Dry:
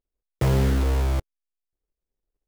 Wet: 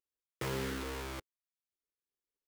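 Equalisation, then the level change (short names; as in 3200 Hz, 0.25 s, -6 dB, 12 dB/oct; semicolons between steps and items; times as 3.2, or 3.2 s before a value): HPF 110 Hz 6 dB/oct; tone controls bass -14 dB, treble -2 dB; bell 670 Hz -11 dB 0.77 oct; -5.0 dB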